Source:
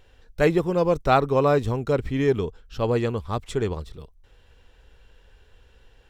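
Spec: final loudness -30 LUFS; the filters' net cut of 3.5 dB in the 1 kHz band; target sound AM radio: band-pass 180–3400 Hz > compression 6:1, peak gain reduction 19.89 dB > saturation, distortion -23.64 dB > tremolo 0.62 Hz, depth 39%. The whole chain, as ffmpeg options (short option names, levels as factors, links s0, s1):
-af "highpass=180,lowpass=3400,equalizer=f=1000:t=o:g=-5,acompressor=threshold=0.0141:ratio=6,asoftclip=threshold=0.0422,tremolo=f=0.62:d=0.39,volume=4.73"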